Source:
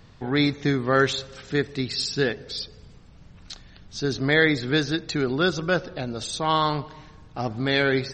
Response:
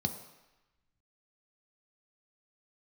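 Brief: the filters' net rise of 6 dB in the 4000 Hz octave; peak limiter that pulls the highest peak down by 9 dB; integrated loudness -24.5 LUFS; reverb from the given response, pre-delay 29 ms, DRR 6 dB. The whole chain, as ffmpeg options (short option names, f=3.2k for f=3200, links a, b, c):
-filter_complex "[0:a]equalizer=f=4k:t=o:g=7,alimiter=limit=-12.5dB:level=0:latency=1,asplit=2[a][b];[1:a]atrim=start_sample=2205,adelay=29[c];[b][c]afir=irnorm=-1:irlink=0,volume=-9dB[d];[a][d]amix=inputs=2:normalize=0,volume=-2dB"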